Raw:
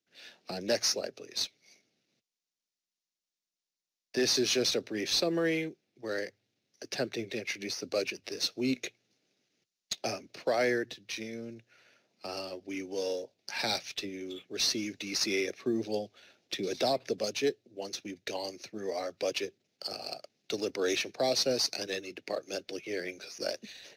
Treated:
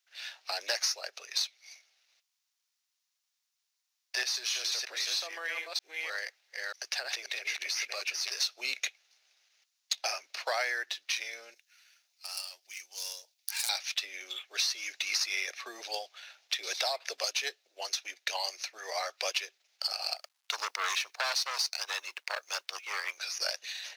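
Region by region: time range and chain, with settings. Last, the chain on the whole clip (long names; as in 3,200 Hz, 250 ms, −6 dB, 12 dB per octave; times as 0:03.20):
0:04.23–0:08.30: delay that plays each chunk backwards 312 ms, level −3.5 dB + downward compressor 3 to 1, threshold −37 dBFS
0:11.54–0:13.69: phase distortion by the signal itself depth 0.085 ms + first-order pre-emphasis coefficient 0.9
0:20.16–0:23.18: mu-law and A-law mismatch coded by A + saturating transformer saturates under 2,100 Hz
whole clip: high-pass filter 830 Hz 24 dB per octave; downward compressor 6 to 1, threshold −37 dBFS; level +9 dB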